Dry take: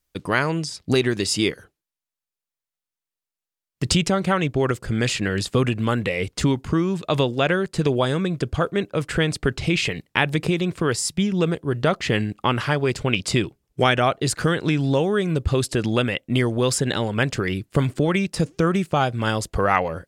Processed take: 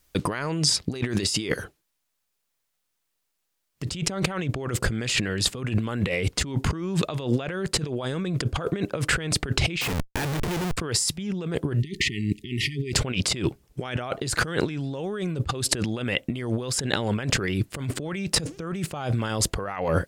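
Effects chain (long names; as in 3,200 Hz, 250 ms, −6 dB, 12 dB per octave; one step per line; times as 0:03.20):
0:09.81–0:10.77: comparator with hysteresis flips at −29.5 dBFS
compressor whose output falls as the input rises −31 dBFS, ratio −1
0:11.80–0:12.93: time-frequency box erased 430–1,800 Hz
level +3.5 dB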